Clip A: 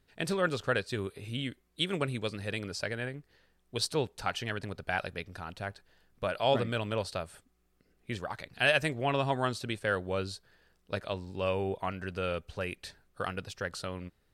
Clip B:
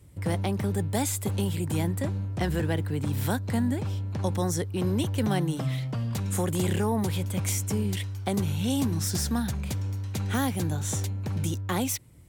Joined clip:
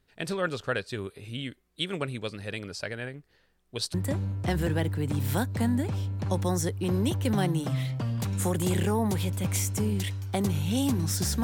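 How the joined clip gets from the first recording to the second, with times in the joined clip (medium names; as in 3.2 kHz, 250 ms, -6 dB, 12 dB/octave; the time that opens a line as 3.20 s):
clip A
3.94 s: go over to clip B from 1.87 s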